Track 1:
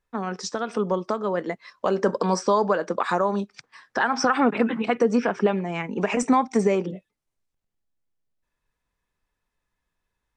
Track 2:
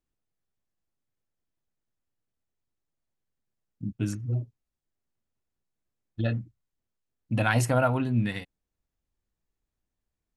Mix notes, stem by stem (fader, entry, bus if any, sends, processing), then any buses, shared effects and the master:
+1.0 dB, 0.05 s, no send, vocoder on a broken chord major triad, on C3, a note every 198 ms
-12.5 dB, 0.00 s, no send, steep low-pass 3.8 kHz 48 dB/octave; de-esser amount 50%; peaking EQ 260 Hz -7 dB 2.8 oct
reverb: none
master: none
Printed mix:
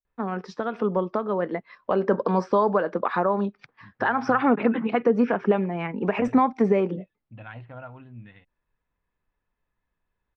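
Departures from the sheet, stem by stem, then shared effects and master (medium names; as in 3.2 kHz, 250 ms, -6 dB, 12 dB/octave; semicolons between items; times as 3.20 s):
stem 1: missing vocoder on a broken chord major triad, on C3, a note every 198 ms; master: extra distance through air 350 m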